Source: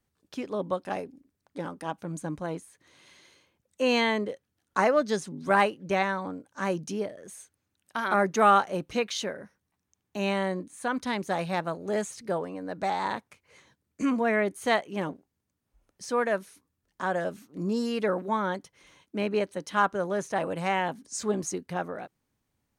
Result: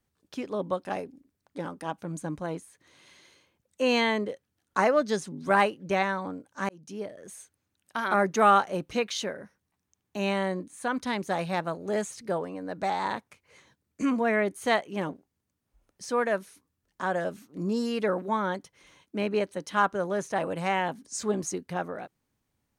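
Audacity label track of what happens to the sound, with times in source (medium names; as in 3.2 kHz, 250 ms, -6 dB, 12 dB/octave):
6.690000	7.230000	fade in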